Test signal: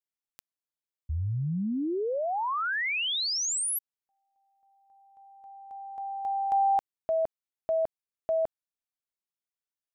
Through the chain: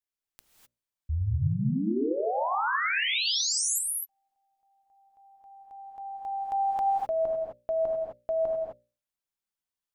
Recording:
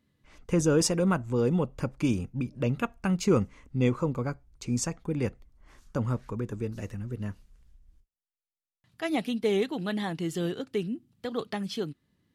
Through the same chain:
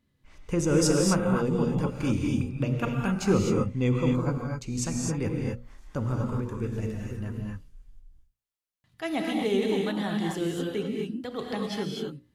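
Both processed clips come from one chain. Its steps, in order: bass shelf 77 Hz +8.5 dB; hum notches 60/120/180/240/300/360/420/480/540/600 Hz; gated-style reverb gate 280 ms rising, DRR -0.5 dB; trim -1.5 dB

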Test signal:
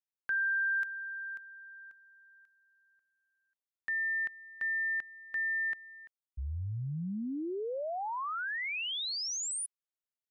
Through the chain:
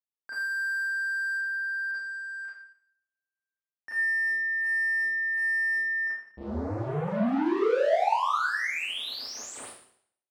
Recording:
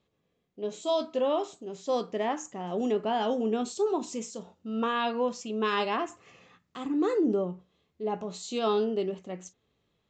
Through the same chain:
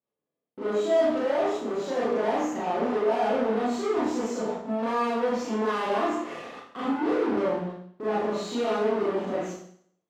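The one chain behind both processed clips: hum notches 60/120/180/240/300/360/420/480 Hz; waveshaping leveller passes 5; peak limiter -28 dBFS; waveshaping leveller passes 2; band-pass filter 540 Hz, Q 0.56; Schroeder reverb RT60 0.61 s, combs from 26 ms, DRR -9 dB; trim -4 dB

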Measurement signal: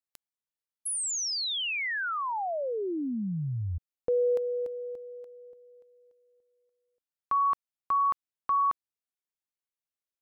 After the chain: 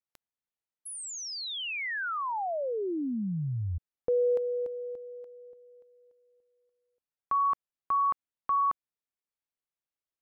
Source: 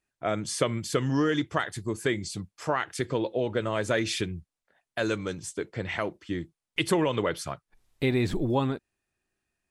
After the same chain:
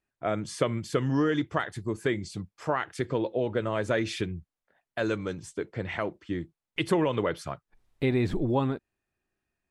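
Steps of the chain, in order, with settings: treble shelf 3.5 kHz -9.5 dB

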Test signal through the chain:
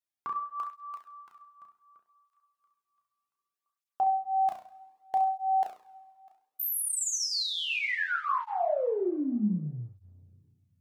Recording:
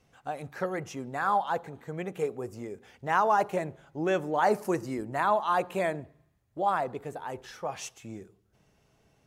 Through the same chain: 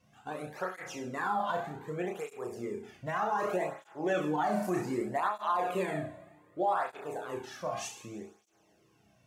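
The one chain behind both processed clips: flutter echo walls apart 5.7 m, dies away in 0.43 s; two-slope reverb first 0.32 s, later 1.9 s, from -18 dB, DRR 6 dB; peak limiter -19.5 dBFS; cancelling through-zero flanger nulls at 0.65 Hz, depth 2.5 ms

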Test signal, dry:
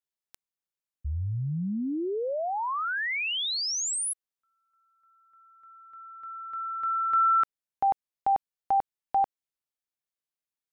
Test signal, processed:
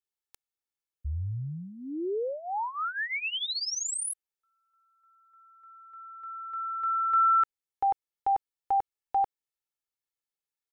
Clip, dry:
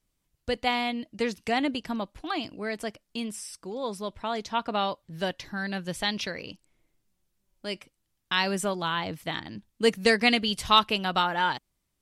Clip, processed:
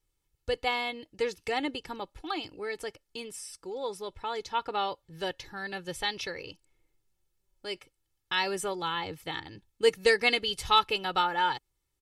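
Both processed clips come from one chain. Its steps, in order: comb 2.3 ms, depth 72%; trim -4.5 dB

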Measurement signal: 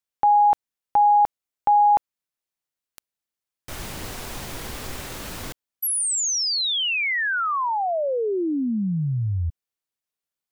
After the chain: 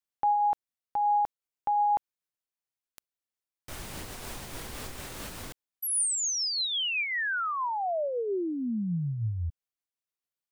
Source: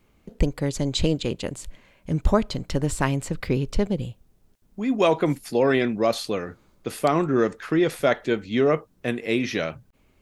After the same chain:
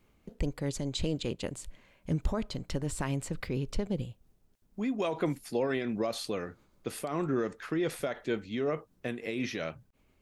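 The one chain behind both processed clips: dynamic bell 9 kHz, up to +3 dB, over -49 dBFS, Q 3.9; peak limiter -15.5 dBFS; random flutter of the level 8 Hz, depth 55%; trim -3.5 dB

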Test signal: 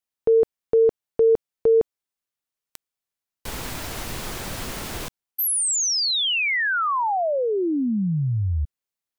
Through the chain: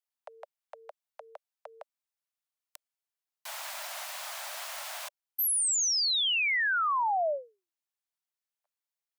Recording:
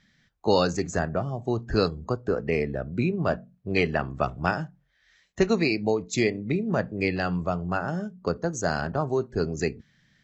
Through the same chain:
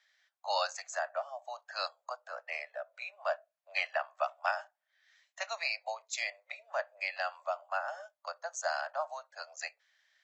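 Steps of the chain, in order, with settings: steep high-pass 580 Hz 96 dB/octave; trim -5 dB

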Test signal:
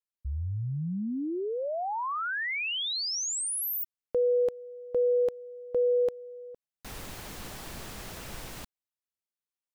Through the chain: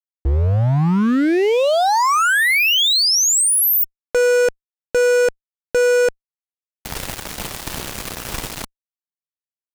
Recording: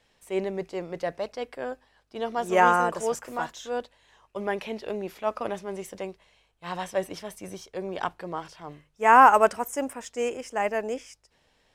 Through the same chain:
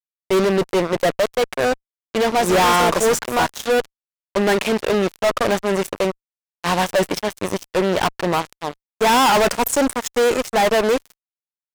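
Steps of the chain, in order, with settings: expander -47 dBFS; fuzz box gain 36 dB, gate -39 dBFS

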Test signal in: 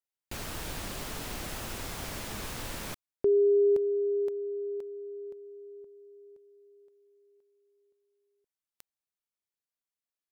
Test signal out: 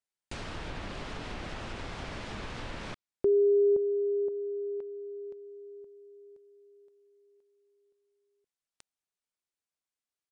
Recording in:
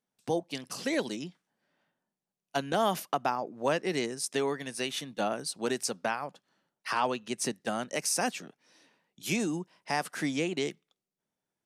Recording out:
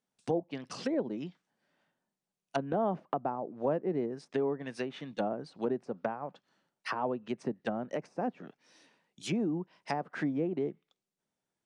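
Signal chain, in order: resampled via 22.05 kHz; low-pass that closes with the level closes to 690 Hz, closed at -28 dBFS

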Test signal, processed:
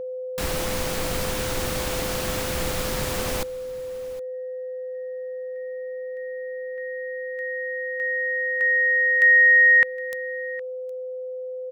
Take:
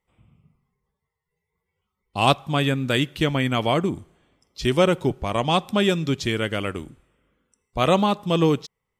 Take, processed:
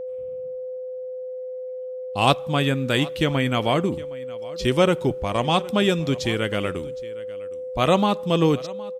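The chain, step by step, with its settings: whistle 510 Hz -29 dBFS; delay 764 ms -20 dB

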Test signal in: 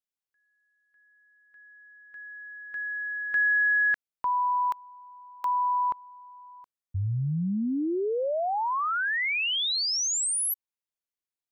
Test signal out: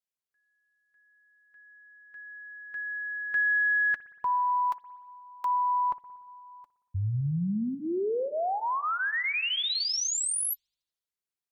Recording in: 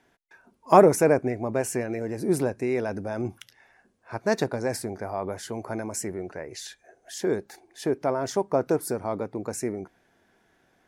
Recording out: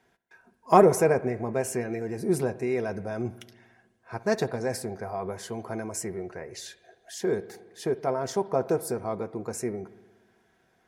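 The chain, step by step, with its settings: comb of notches 290 Hz; Chebyshev shaper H 2 -33 dB, 3 -31 dB, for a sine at -4 dBFS; spring tank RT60 1.3 s, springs 58 ms, chirp 30 ms, DRR 16 dB

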